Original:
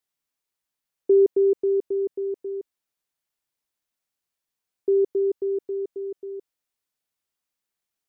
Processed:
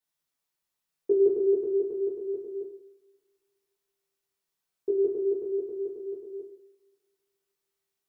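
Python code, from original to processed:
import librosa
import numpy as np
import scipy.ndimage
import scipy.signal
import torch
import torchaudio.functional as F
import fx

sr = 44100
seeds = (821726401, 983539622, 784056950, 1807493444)

y = fx.rev_double_slope(x, sr, seeds[0], early_s=0.58, late_s=2.0, knee_db=-24, drr_db=-6.0)
y = y * 10.0 ** (-6.5 / 20.0)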